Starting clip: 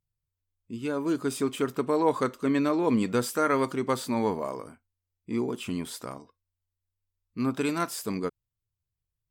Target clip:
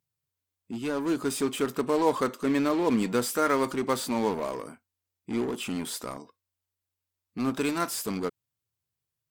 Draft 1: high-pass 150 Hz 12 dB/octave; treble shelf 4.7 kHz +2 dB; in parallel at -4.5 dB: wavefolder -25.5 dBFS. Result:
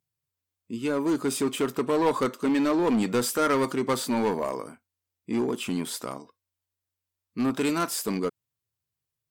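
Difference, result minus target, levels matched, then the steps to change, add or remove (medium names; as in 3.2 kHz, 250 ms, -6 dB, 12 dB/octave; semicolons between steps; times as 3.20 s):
wavefolder: distortion -17 dB
change: wavefolder -35 dBFS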